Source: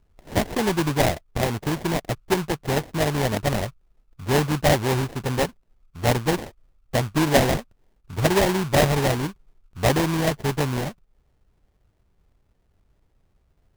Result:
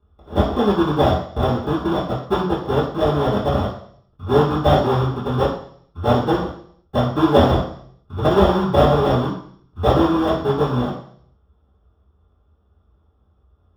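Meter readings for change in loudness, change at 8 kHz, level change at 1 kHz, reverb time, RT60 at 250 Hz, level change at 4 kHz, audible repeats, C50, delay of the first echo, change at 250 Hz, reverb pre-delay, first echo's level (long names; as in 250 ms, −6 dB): +4.5 dB, below −15 dB, +6.0 dB, 0.60 s, 0.60 s, −0.5 dB, no echo audible, 5.0 dB, no echo audible, +5.5 dB, 3 ms, no echo audible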